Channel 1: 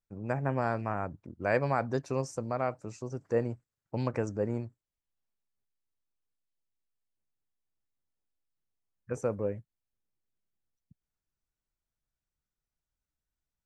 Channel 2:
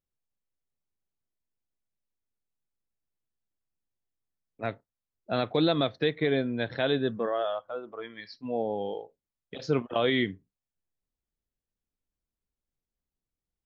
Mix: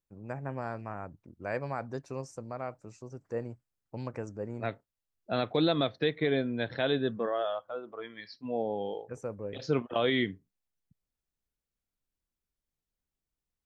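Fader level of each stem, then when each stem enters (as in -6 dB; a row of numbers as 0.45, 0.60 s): -6.5, -2.0 dB; 0.00, 0.00 s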